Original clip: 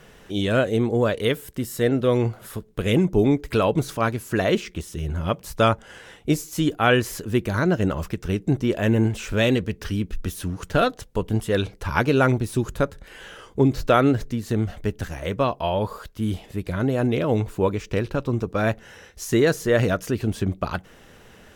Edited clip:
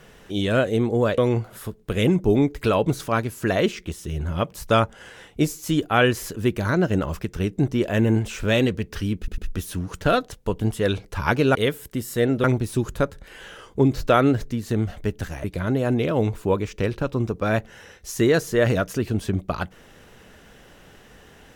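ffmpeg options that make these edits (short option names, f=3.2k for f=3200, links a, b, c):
-filter_complex "[0:a]asplit=7[a][b][c][d][e][f][g];[a]atrim=end=1.182[h];[b]atrim=start=2.068:end=10.172[i];[c]atrim=start=10.068:end=10.172[j];[d]atrim=start=10.068:end=12.242[k];[e]atrim=start=1.178:end=2.072[l];[f]atrim=start=12.238:end=15.242[m];[g]atrim=start=16.568[n];[h][i]acrossfade=d=0.004:c1=hsin:c2=hsin[o];[o][j]acrossfade=d=0.004:c1=hsin:c2=hsin[p];[p][k]acrossfade=d=0.004:c1=hsin:c2=hsin[q];[q][l]acrossfade=d=0.004:c1=hsin:c2=hsin[r];[r][m]acrossfade=d=0.004:c1=hsin:c2=hsin[s];[s][n]acrossfade=d=0.004:c1=hsin:c2=hsin"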